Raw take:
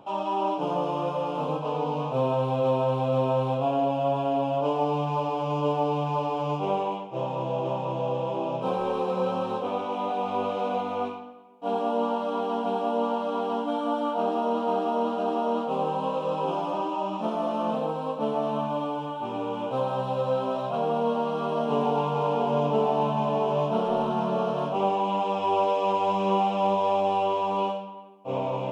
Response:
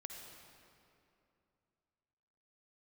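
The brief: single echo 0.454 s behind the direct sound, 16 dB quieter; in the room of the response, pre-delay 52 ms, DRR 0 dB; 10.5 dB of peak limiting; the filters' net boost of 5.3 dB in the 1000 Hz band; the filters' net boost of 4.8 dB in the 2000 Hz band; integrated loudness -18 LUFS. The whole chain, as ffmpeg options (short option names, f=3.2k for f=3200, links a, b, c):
-filter_complex "[0:a]equalizer=f=1k:t=o:g=5.5,equalizer=f=2k:t=o:g=5.5,alimiter=limit=-19dB:level=0:latency=1,aecho=1:1:454:0.158,asplit=2[a][b];[1:a]atrim=start_sample=2205,adelay=52[c];[b][c]afir=irnorm=-1:irlink=0,volume=3.5dB[d];[a][d]amix=inputs=2:normalize=0,volume=6.5dB"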